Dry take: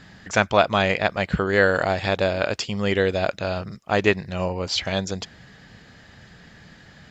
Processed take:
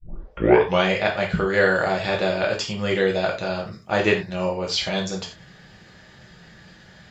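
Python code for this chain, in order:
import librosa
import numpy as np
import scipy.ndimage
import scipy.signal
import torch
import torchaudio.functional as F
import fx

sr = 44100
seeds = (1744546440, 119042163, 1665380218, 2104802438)

y = fx.tape_start_head(x, sr, length_s=0.86)
y = fx.rev_gated(y, sr, seeds[0], gate_ms=130, shape='falling', drr_db=-1.0)
y = F.gain(torch.from_numpy(y), -3.0).numpy()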